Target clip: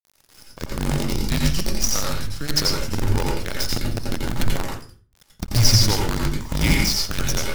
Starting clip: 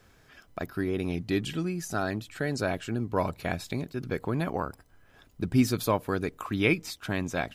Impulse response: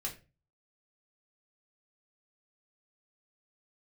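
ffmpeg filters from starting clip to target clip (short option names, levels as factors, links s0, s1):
-filter_complex "[0:a]afreqshift=-140,lowpass=f=5400:t=q:w=6.4,bass=f=250:g=7,treble=f=4000:g=13,acrusher=bits=4:dc=4:mix=0:aa=0.000001,asplit=2[s0][s1];[1:a]atrim=start_sample=2205,asetrate=32193,aresample=44100,adelay=85[s2];[s1][s2]afir=irnorm=-1:irlink=0,volume=0.794[s3];[s0][s3]amix=inputs=2:normalize=0,volume=0.708"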